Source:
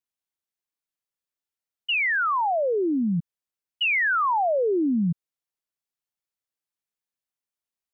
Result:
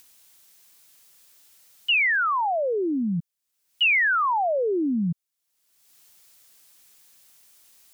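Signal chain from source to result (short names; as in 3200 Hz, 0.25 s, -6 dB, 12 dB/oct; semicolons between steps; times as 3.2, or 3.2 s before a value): high shelf 2800 Hz +10.5 dB; upward compressor, threshold -32 dBFS; gain -1.5 dB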